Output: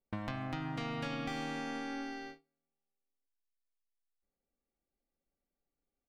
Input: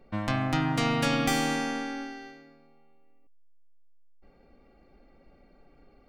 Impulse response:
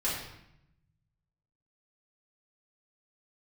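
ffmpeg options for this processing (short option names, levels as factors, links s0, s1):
-filter_complex "[0:a]acrossover=split=5000[s0][s1];[s1]acompressor=threshold=0.00224:ratio=4:attack=1:release=60[s2];[s0][s2]amix=inputs=2:normalize=0,agate=range=0.0251:threshold=0.00501:ratio=16:detection=peak,acompressor=threshold=0.0178:ratio=6,asplit=2[s3][s4];[s4]adelay=71,lowpass=f=950:p=1,volume=0.112,asplit=2[s5][s6];[s6]adelay=71,lowpass=f=950:p=1,volume=0.15[s7];[s5][s7]amix=inputs=2:normalize=0[s8];[s3][s8]amix=inputs=2:normalize=0,volume=0.891"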